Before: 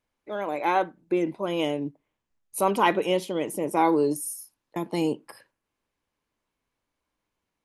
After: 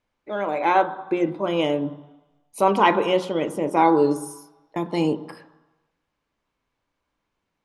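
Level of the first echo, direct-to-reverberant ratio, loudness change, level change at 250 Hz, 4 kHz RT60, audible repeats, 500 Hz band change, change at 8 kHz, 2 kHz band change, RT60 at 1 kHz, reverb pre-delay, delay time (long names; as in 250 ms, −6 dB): no echo audible, 9.5 dB, +4.0 dB, +3.5 dB, 1.2 s, no echo audible, +4.0 dB, −5.5 dB, +4.0 dB, 1.1 s, 3 ms, no echo audible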